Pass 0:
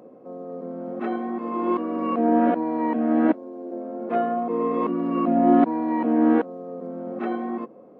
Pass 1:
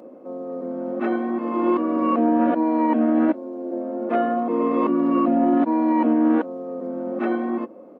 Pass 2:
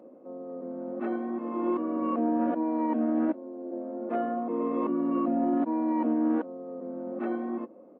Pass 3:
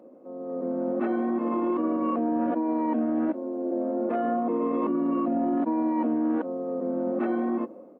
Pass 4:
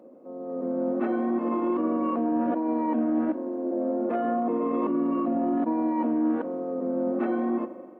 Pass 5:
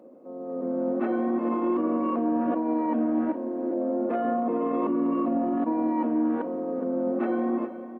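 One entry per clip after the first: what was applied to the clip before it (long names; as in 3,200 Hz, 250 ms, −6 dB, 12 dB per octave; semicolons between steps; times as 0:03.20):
high-pass filter 180 Hz 12 dB per octave; comb filter 3.4 ms, depth 37%; brickwall limiter −15 dBFS, peak gain reduction 9 dB; level +4 dB
high-shelf EQ 2,000 Hz −9.5 dB; level −7.5 dB
brickwall limiter −27.5 dBFS, peak gain reduction 8.5 dB; automatic gain control gain up to 8.5 dB
spring reverb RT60 1.9 s, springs 42 ms, chirp 75 ms, DRR 13 dB
single-tap delay 419 ms −13.5 dB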